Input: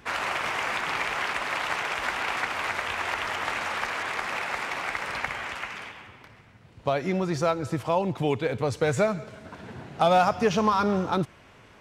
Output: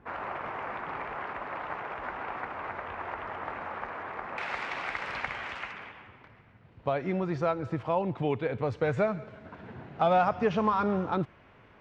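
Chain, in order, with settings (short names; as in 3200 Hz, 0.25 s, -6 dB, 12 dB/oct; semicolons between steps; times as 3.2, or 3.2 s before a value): LPF 1200 Hz 12 dB/oct, from 4.38 s 4200 Hz, from 5.72 s 2500 Hz; gain -3.5 dB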